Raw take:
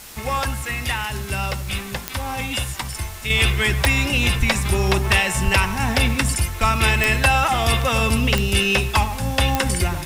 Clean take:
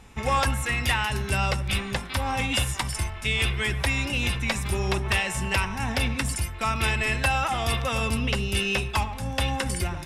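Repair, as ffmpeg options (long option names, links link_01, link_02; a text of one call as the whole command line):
ffmpeg -i in.wav -filter_complex "[0:a]adeclick=threshold=4,asplit=3[link_01][link_02][link_03];[link_01]afade=type=out:start_time=4.39:duration=0.02[link_04];[link_02]highpass=frequency=140:width=0.5412,highpass=frequency=140:width=1.3066,afade=type=in:start_time=4.39:duration=0.02,afade=type=out:start_time=4.51:duration=0.02[link_05];[link_03]afade=type=in:start_time=4.51:duration=0.02[link_06];[link_04][link_05][link_06]amix=inputs=3:normalize=0,asplit=3[link_07][link_08][link_09];[link_07]afade=type=out:start_time=5.44:duration=0.02[link_10];[link_08]highpass=frequency=140:width=0.5412,highpass=frequency=140:width=1.3066,afade=type=in:start_time=5.44:duration=0.02,afade=type=out:start_time=5.56:duration=0.02[link_11];[link_09]afade=type=in:start_time=5.56:duration=0.02[link_12];[link_10][link_11][link_12]amix=inputs=3:normalize=0,asplit=3[link_13][link_14][link_15];[link_13]afade=type=out:start_time=6.6:duration=0.02[link_16];[link_14]highpass=frequency=140:width=0.5412,highpass=frequency=140:width=1.3066,afade=type=in:start_time=6.6:duration=0.02,afade=type=out:start_time=6.72:duration=0.02[link_17];[link_15]afade=type=in:start_time=6.72:duration=0.02[link_18];[link_16][link_17][link_18]amix=inputs=3:normalize=0,afwtdn=0.011,asetnsamples=nb_out_samples=441:pad=0,asendcmd='3.3 volume volume -7dB',volume=0dB" out.wav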